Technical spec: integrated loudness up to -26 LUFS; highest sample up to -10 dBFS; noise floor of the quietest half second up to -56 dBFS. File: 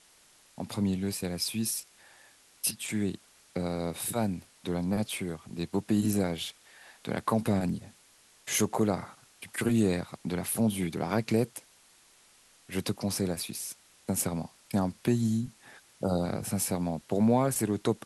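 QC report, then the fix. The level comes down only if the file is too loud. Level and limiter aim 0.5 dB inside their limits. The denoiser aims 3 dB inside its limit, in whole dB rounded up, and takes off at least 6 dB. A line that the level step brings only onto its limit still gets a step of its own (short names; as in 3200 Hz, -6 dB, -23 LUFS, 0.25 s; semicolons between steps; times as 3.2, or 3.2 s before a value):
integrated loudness -31.0 LUFS: OK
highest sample -13.5 dBFS: OK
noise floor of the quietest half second -61 dBFS: OK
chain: none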